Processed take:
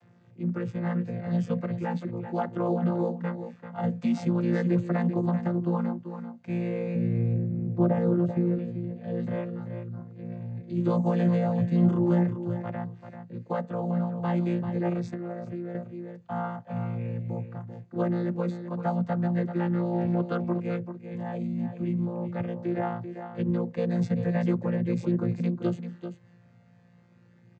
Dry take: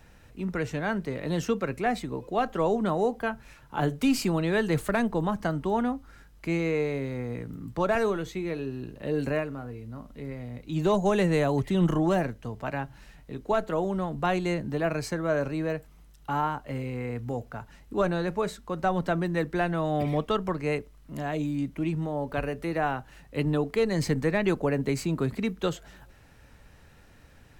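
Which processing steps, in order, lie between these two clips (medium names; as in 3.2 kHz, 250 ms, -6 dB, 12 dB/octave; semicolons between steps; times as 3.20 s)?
vocoder on a held chord bare fifth, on A#2; 6.95–8.59 s: tilt shelf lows +7.5 dB, about 680 Hz; delay 389 ms -9.5 dB; 15.05–15.75 s: compression 6:1, threshold -32 dBFS, peak gain reduction 9.5 dB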